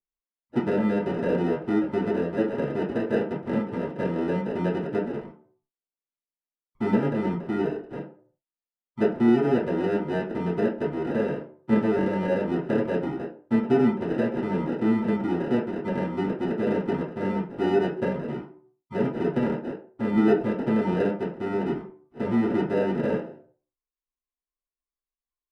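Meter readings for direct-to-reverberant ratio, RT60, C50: −8.0 dB, 0.55 s, 9.0 dB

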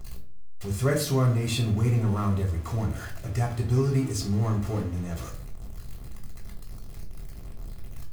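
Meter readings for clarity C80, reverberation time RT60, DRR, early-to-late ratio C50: 13.5 dB, 0.45 s, 0.0 dB, 9.5 dB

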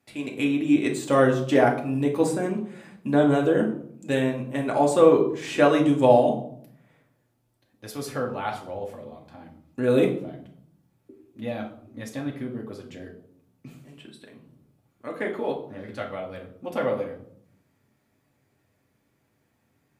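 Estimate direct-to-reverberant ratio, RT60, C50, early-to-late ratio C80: −1.0 dB, 0.65 s, 8.5 dB, 12.5 dB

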